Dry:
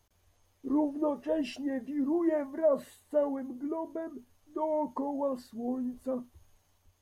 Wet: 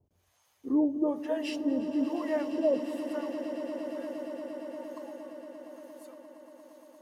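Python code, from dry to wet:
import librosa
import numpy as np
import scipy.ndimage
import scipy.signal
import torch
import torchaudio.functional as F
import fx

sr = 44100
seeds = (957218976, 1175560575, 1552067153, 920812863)

y = fx.harmonic_tremolo(x, sr, hz=1.1, depth_pct=100, crossover_hz=600.0)
y = fx.filter_sweep_highpass(y, sr, from_hz=87.0, to_hz=2500.0, start_s=2.48, end_s=3.36, q=0.78)
y = fx.echo_swell(y, sr, ms=116, loudest=8, wet_db=-15.0)
y = y * librosa.db_to_amplitude(5.0)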